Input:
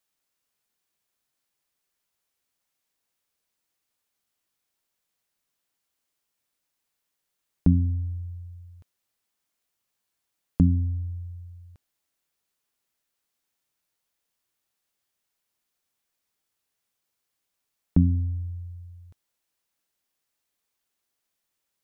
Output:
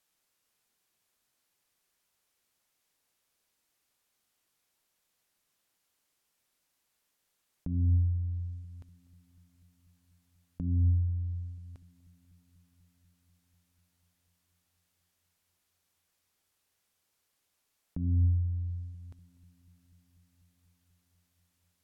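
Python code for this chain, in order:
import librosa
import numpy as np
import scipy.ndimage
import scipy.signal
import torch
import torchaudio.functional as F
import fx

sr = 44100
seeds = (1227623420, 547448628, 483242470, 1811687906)

y = fx.env_lowpass_down(x, sr, base_hz=660.0, full_db=-23.5)
y = fx.over_compress(y, sr, threshold_db=-26.0, ratio=-1.0)
y = fx.echo_filtered(y, sr, ms=245, feedback_pct=81, hz=800.0, wet_db=-19.5)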